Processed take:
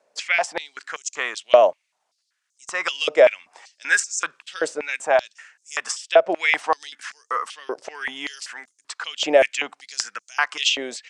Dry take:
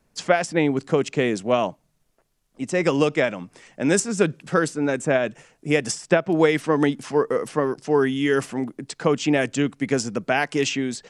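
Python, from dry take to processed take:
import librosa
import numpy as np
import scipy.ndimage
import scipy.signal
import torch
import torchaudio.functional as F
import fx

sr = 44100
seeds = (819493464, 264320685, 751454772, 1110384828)

y = scipy.signal.sosfilt(scipy.signal.butter(4, 8900.0, 'lowpass', fs=sr, output='sos'), x)
y = fx.filter_held_highpass(y, sr, hz=5.2, low_hz=570.0, high_hz=6400.0)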